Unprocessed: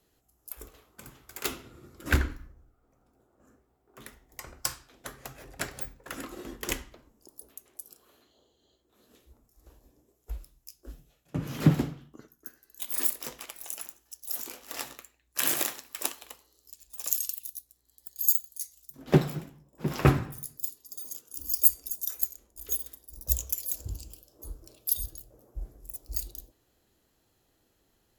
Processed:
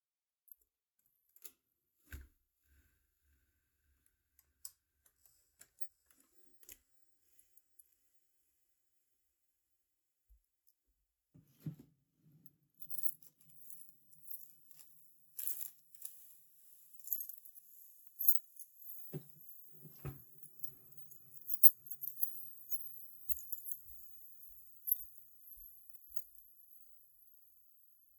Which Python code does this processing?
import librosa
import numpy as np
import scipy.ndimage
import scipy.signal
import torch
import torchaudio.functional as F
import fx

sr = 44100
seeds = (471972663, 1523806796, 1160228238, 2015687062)

y = F.preemphasis(torch.from_numpy(x), 0.8).numpy()
y = fx.echo_diffused(y, sr, ms=692, feedback_pct=78, wet_db=-11.0)
y = fx.spectral_expand(y, sr, expansion=1.5)
y = y * librosa.db_to_amplitude(-6.5)